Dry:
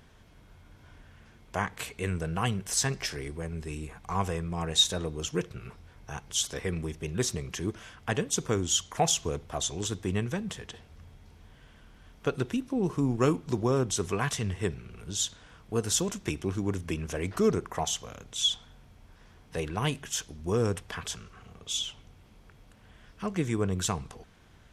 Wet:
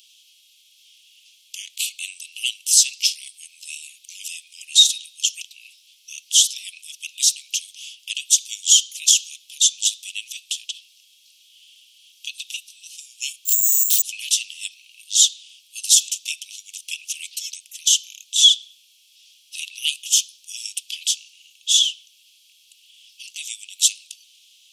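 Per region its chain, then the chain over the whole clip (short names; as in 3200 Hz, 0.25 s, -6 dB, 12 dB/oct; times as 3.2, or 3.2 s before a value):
13.45–14.02 low shelf 210 Hz -11.5 dB + careless resampling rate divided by 6×, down none, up zero stuff
whole clip: steep high-pass 2700 Hz 72 dB/oct; maximiser +17 dB; gain -1 dB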